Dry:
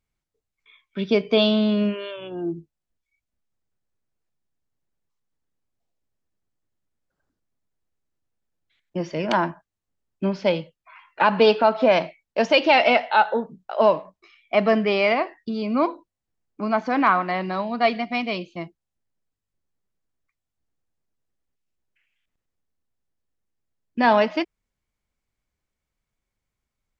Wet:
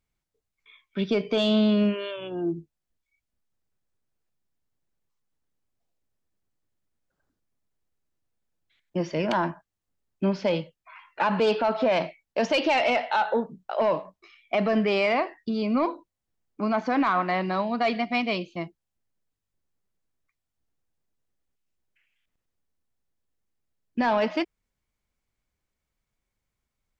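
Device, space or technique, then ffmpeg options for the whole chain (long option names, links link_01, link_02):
soft clipper into limiter: -af "asoftclip=type=tanh:threshold=-9dB,alimiter=limit=-15.5dB:level=0:latency=1:release=23"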